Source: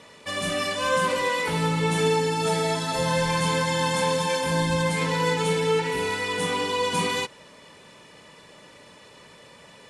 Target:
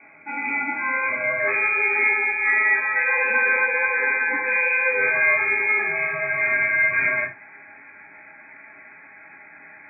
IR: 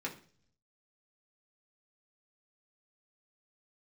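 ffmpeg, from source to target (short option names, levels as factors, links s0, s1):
-filter_complex "[0:a]asetnsamples=n=441:p=0,asendcmd='1.4 equalizer g 5.5',equalizer=f=820:t=o:w=0.62:g=-12,lowpass=f=2200:t=q:w=0.5098,lowpass=f=2200:t=q:w=0.6013,lowpass=f=2200:t=q:w=0.9,lowpass=f=2200:t=q:w=2.563,afreqshift=-2600[s0];[1:a]atrim=start_sample=2205,afade=t=out:st=0.14:d=0.01,atrim=end_sample=6615[s1];[s0][s1]afir=irnorm=-1:irlink=0,volume=1.33"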